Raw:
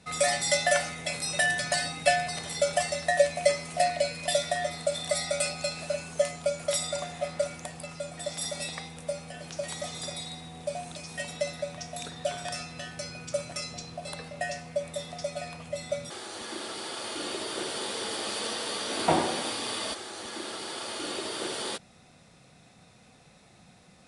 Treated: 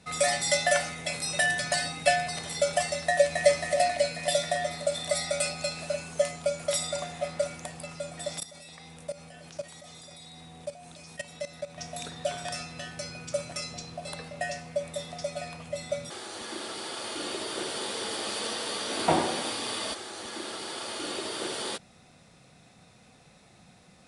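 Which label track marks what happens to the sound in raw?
3.040000	3.460000	echo throw 270 ms, feedback 65%, level -3.5 dB
8.400000	11.780000	level held to a coarse grid steps of 16 dB

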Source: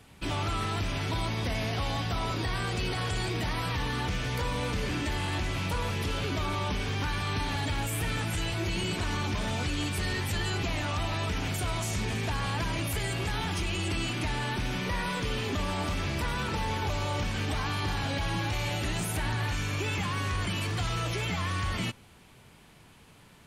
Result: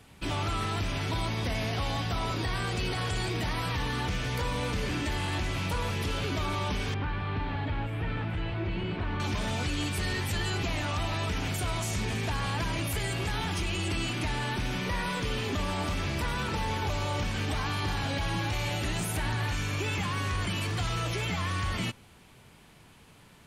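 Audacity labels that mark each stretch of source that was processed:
6.940000	9.200000	distance through air 430 m

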